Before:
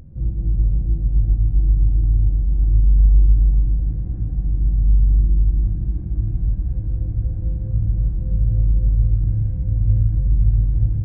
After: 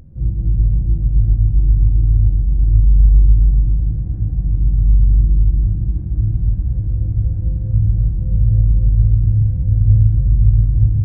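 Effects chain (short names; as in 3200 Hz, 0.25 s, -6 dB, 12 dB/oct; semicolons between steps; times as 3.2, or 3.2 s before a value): dynamic EQ 100 Hz, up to +7 dB, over -29 dBFS, Q 0.8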